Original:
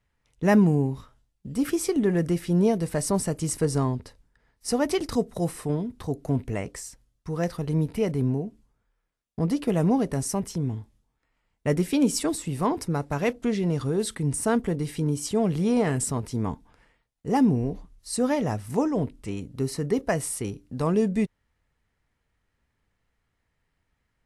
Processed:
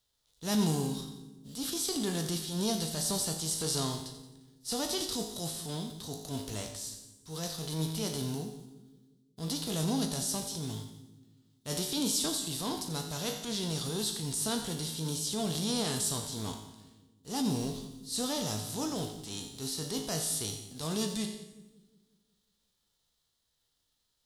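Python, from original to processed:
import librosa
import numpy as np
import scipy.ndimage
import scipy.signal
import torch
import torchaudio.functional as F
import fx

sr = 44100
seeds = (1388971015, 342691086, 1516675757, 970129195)

p1 = fx.envelope_flatten(x, sr, power=0.6)
p2 = fx.high_shelf_res(p1, sr, hz=2900.0, db=8.0, q=3.0)
p3 = fx.comb_fb(p2, sr, f0_hz=53.0, decay_s=0.71, harmonics='all', damping=0.0, mix_pct=70)
p4 = fx.transient(p3, sr, attack_db=-7, sustain_db=2)
p5 = p4 + fx.echo_split(p4, sr, split_hz=390.0, low_ms=181, high_ms=88, feedback_pct=52, wet_db=-12, dry=0)
y = F.gain(torch.from_numpy(p5), -2.5).numpy()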